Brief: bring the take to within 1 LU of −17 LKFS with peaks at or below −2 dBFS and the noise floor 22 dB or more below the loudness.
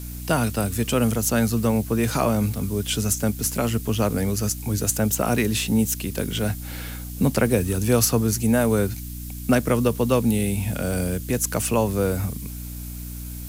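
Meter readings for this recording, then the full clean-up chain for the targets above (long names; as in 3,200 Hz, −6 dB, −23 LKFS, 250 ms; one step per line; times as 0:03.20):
mains hum 60 Hz; hum harmonics up to 300 Hz; level of the hum −32 dBFS; background noise floor −34 dBFS; target noise floor −45 dBFS; integrated loudness −22.5 LKFS; sample peak −5.0 dBFS; target loudness −17.0 LKFS
→ hum removal 60 Hz, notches 5
noise reduction from a noise print 11 dB
level +5.5 dB
brickwall limiter −2 dBFS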